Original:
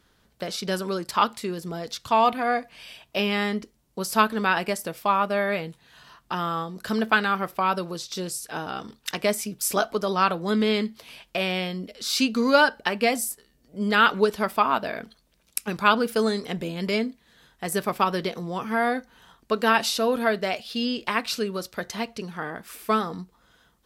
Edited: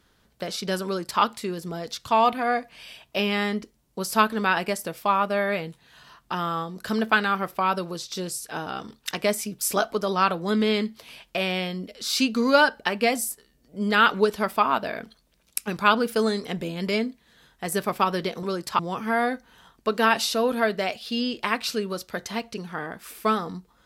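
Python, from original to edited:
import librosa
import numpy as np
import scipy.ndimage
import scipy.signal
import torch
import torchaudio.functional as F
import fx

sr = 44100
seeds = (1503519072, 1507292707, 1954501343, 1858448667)

y = fx.edit(x, sr, fx.duplicate(start_s=0.85, length_s=0.36, to_s=18.43), tone=tone)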